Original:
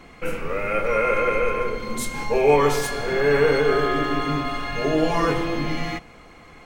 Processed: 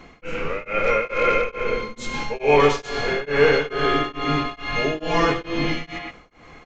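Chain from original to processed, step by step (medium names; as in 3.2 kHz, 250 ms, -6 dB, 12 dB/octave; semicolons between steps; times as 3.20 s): dynamic bell 2.9 kHz, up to +6 dB, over -41 dBFS, Q 1.2; speakerphone echo 120 ms, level -6 dB; resampled via 16 kHz; tremolo of two beating tones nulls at 2.3 Hz; trim +1.5 dB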